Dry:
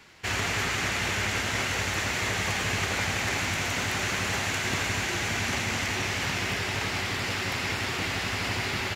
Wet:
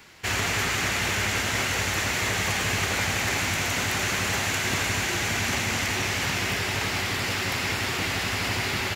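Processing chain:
high-shelf EQ 11,000 Hz +9.5 dB
in parallel at −9.5 dB: soft clipping −23.5 dBFS, distortion −16 dB

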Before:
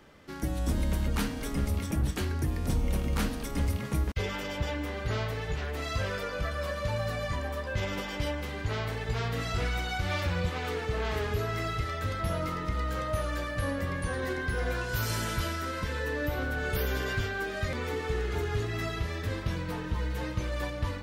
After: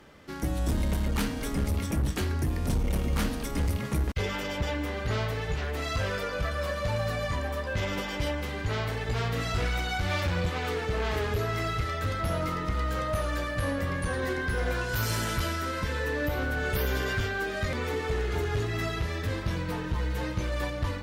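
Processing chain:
asymmetric clip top −27 dBFS, bottom −22 dBFS
level +2.5 dB

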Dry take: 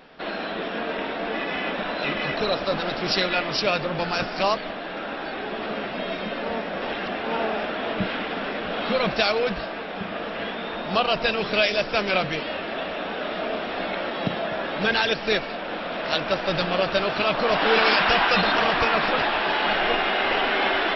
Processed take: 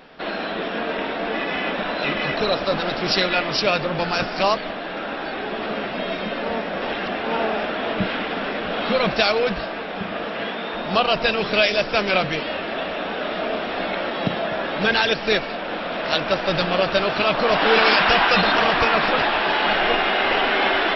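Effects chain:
0:10.24–0:10.73: high-pass filter 62 Hz → 190 Hz 6 dB per octave
level +3 dB

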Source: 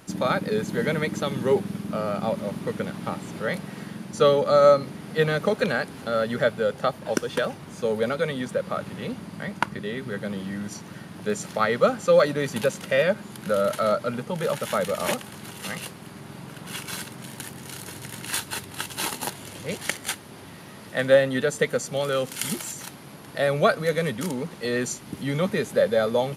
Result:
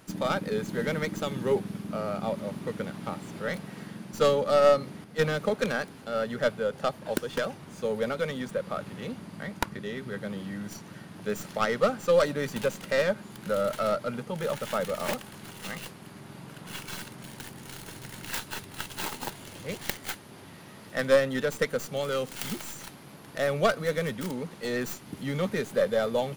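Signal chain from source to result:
stylus tracing distortion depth 0.45 ms
0:05.04–0:06.73: multiband upward and downward expander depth 40%
level −4.5 dB

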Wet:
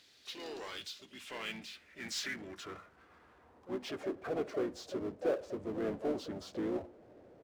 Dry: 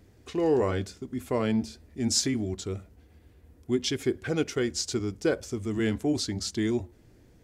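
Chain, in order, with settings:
pitch-shifted copies added −5 semitones −7 dB, −3 semitones −7 dB, +7 semitones −16 dB
band-pass filter sweep 3,900 Hz → 600 Hz, 0:00.77–0:04.48
power curve on the samples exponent 0.7
level −4.5 dB

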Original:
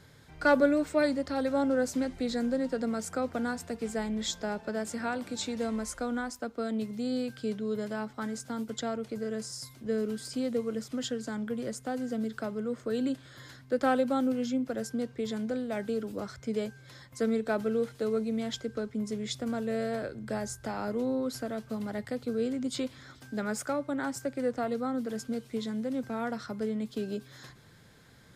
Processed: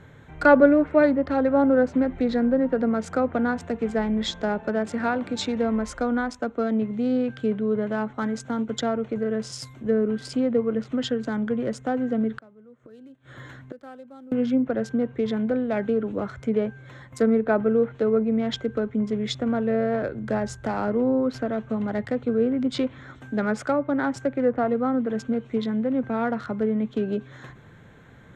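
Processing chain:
adaptive Wiener filter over 9 samples
0:12.36–0:14.32: gate with flip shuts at −33 dBFS, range −25 dB
treble cut that deepens with the level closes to 1,900 Hz, closed at −26.5 dBFS
level +8.5 dB

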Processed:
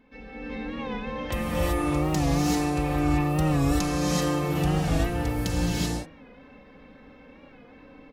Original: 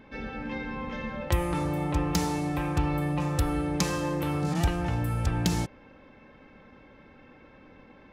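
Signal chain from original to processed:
comb filter 4.1 ms, depth 48%
hum removal 76.73 Hz, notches 31
automatic gain control gain up to 3.5 dB
reverb whose tail is shaped and stops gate 410 ms rising, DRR −6.5 dB
wow of a warped record 45 rpm, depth 100 cents
level −8.5 dB

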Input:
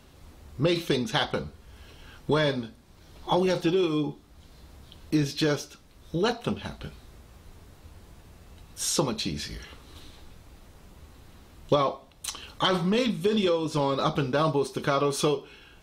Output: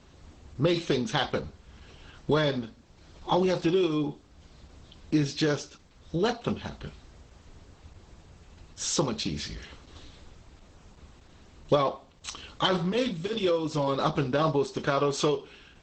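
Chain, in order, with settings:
0:12.77–0:13.88: notch comb filter 210 Hz
harmonic generator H 4 −39 dB, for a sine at −10.5 dBFS
Opus 12 kbit/s 48,000 Hz

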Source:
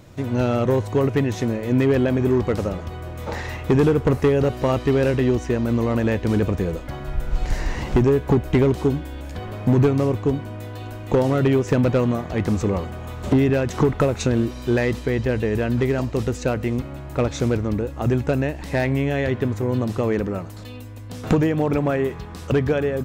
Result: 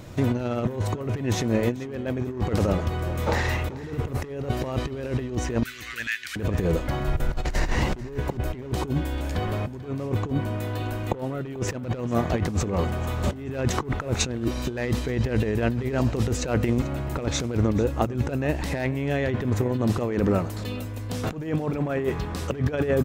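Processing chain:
0:05.63–0:06.36: Butterworth high-pass 1,500 Hz 48 dB per octave
0:10.31–0:11.41: dynamic equaliser 5,700 Hz, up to −7 dB, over −52 dBFS, Q 1.1
compressor whose output falls as the input rises −24 dBFS, ratio −0.5
on a send: repeating echo 439 ms, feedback 24%, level −19 dB

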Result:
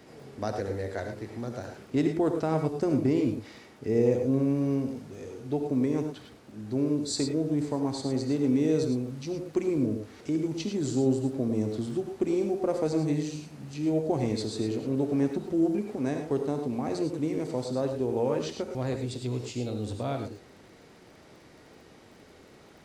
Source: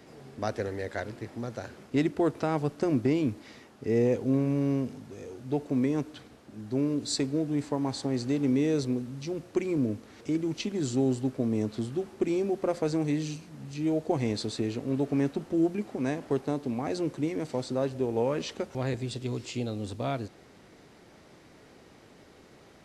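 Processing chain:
reverb whose tail is shaped and stops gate 130 ms rising, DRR 5 dB
surface crackle 28 per second −49 dBFS
dynamic equaliser 2,300 Hz, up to −5 dB, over −46 dBFS, Q 0.74

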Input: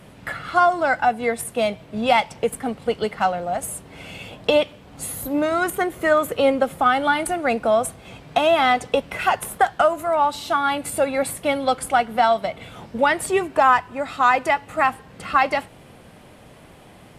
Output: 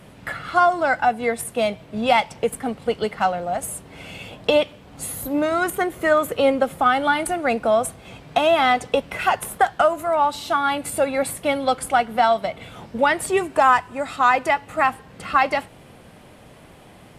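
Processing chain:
0:13.37–0:14.16: parametric band 8,700 Hz +6.5 dB 0.83 octaves

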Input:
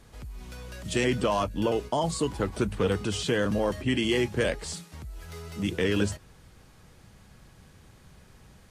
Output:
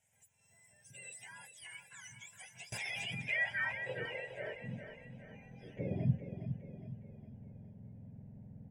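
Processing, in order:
frequency axis turned over on the octave scale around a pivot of 1,000 Hz
0:04.05–0:05.79: meter weighting curve ITU-R 468
background noise pink −61 dBFS
phaser with its sweep stopped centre 1,200 Hz, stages 6
brickwall limiter −24 dBFS, peak gain reduction 9.5 dB
band-pass filter sweep 7,900 Hz → 260 Hz, 0:02.41–0:04.83
RIAA equalisation playback
repeating echo 412 ms, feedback 48%, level −9 dB
0:02.72–0:03.22: envelope flattener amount 100%
level +5 dB

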